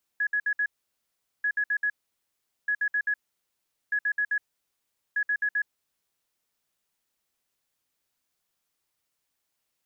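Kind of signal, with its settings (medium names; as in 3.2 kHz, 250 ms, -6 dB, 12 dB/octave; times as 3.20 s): beep pattern sine 1.68 kHz, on 0.07 s, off 0.06 s, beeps 4, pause 0.78 s, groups 5, -22.5 dBFS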